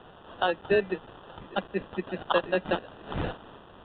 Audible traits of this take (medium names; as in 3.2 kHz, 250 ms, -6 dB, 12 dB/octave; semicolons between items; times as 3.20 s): a quantiser's noise floor 8-bit, dither triangular; tremolo saw up 0.84 Hz, depth 35%; aliases and images of a low sample rate 2.2 kHz, jitter 0%; µ-law